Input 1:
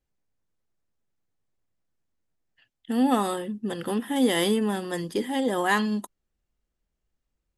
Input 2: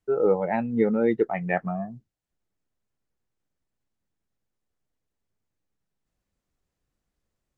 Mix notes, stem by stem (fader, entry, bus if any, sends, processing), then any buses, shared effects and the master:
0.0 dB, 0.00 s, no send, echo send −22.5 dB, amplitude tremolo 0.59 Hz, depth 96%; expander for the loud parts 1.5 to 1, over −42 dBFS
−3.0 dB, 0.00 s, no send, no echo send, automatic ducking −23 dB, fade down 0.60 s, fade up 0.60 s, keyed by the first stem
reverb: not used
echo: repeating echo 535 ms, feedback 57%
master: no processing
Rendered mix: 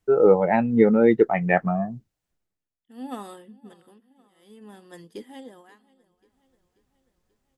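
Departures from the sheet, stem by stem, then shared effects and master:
stem 1 0.0 dB → −9.0 dB
stem 2 −3.0 dB → +5.5 dB

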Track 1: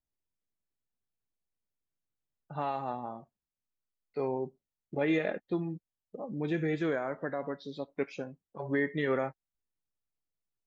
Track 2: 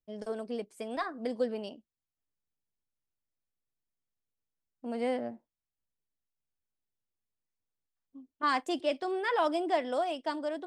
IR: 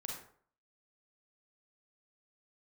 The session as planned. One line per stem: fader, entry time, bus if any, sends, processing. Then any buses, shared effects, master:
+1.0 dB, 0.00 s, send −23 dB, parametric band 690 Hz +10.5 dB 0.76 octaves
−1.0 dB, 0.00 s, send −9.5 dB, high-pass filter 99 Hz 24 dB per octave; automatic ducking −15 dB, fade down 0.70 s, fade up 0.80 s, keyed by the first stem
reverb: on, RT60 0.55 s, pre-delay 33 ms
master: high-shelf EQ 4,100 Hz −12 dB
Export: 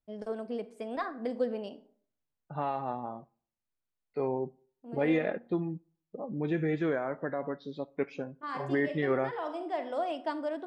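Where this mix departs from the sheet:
stem 1: missing parametric band 690 Hz +10.5 dB 0.76 octaves
stem 2: missing high-pass filter 99 Hz 24 dB per octave

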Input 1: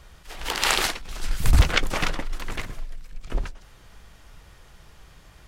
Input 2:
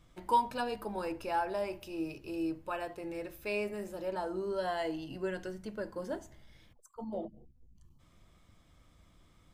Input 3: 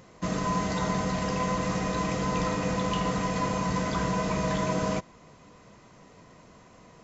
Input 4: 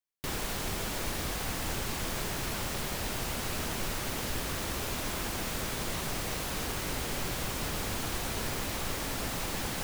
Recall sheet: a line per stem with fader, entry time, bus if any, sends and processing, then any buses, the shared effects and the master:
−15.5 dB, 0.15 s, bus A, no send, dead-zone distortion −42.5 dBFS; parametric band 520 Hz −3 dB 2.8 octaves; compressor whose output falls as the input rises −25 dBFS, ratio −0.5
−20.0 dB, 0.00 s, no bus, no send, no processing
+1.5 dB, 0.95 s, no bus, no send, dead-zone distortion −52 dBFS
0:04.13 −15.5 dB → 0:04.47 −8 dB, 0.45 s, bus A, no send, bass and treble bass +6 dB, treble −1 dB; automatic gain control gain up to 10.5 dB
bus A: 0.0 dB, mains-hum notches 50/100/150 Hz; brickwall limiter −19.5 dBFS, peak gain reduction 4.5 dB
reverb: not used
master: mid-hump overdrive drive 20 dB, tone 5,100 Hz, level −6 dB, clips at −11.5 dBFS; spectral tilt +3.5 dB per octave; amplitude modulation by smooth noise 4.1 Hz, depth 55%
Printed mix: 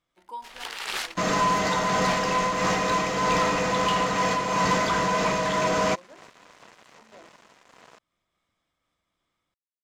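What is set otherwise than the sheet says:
stem 4: muted
master: missing spectral tilt +3.5 dB per octave

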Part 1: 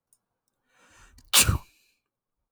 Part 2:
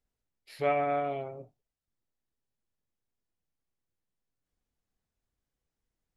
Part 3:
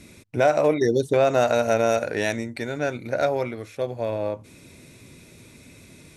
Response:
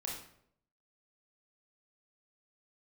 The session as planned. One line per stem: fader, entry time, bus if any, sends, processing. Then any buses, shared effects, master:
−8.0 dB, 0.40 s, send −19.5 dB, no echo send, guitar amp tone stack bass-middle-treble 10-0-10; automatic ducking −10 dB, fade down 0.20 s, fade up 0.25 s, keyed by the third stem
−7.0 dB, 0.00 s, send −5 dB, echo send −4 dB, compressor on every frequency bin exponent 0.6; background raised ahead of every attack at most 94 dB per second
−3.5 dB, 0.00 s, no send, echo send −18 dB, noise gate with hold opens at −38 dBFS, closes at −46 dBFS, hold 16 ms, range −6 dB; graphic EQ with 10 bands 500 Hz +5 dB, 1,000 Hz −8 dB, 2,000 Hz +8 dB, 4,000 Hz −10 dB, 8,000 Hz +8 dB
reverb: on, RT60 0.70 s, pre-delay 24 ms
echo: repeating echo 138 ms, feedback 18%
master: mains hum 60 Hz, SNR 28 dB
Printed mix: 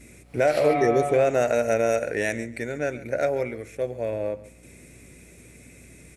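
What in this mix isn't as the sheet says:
stem 1: muted
reverb return +6.5 dB

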